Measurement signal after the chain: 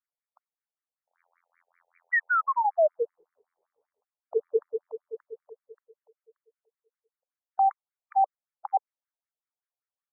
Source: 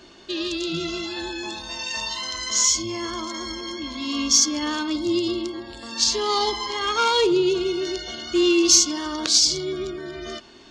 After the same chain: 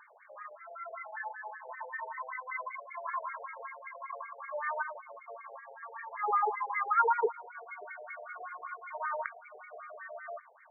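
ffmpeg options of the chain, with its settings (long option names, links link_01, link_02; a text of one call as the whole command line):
ffmpeg -i in.wav -af "aphaser=in_gain=1:out_gain=1:delay=1.8:decay=0.22:speed=0.55:type=triangular,afftfilt=real='re*between(b*sr/1024,600*pow(1700/600,0.5+0.5*sin(2*PI*5.2*pts/sr))/1.41,600*pow(1700/600,0.5+0.5*sin(2*PI*5.2*pts/sr))*1.41)':imag='im*between(b*sr/1024,600*pow(1700/600,0.5+0.5*sin(2*PI*5.2*pts/sr))/1.41,600*pow(1700/600,0.5+0.5*sin(2*PI*5.2*pts/sr))*1.41)':win_size=1024:overlap=0.75" out.wav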